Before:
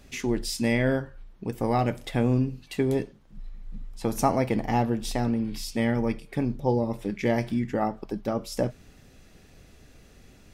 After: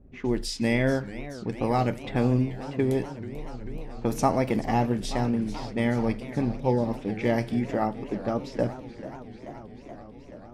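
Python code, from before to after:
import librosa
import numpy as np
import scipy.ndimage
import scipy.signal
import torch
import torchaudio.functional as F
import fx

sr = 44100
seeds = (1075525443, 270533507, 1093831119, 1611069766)

y = fx.wow_flutter(x, sr, seeds[0], rate_hz=2.1, depth_cents=29.0)
y = fx.env_lowpass(y, sr, base_hz=420.0, full_db=-23.5)
y = fx.echo_warbled(y, sr, ms=434, feedback_pct=78, rate_hz=2.8, cents=216, wet_db=-15)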